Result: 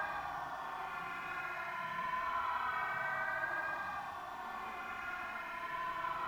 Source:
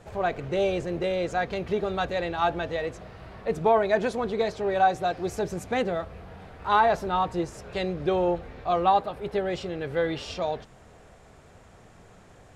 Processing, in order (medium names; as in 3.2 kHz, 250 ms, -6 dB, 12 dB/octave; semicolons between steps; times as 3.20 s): on a send: feedback echo behind a band-pass 396 ms, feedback 83%, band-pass 650 Hz, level -8.5 dB; on the sum: Paulstretch 19×, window 0.10 s, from 11.35 s; hum notches 50/100/150/200/250/300/350/400 Hz; speed mistake 7.5 ips tape played at 15 ips; trim -4 dB